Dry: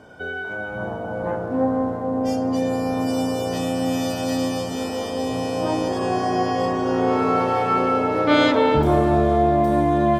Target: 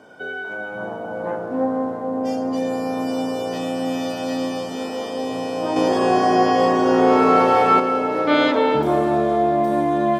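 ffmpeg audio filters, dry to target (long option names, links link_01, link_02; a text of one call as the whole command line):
ffmpeg -i in.wav -filter_complex "[0:a]acrossover=split=4800[link_01][link_02];[link_02]acompressor=threshold=-46dB:ratio=4:attack=1:release=60[link_03];[link_01][link_03]amix=inputs=2:normalize=0,highpass=200,asettb=1/sr,asplit=3[link_04][link_05][link_06];[link_04]atrim=end=5.764[link_07];[link_05]atrim=start=5.76:end=7.8,asetpts=PTS-STARTPTS,afade=type=in:duration=0.004:curve=qsin,afade=type=out:start_time=2.036:duration=0.004:curve=qsin,acontrast=53[link_08];[link_06]atrim=start=7.796[link_09];[link_07][link_08]acrossfade=duration=0.004:curve1=hsin:curve2=qsin[link_10];[link_10][link_09]acrossfade=duration=0.004:curve1=qsin:curve2=hsin" out.wav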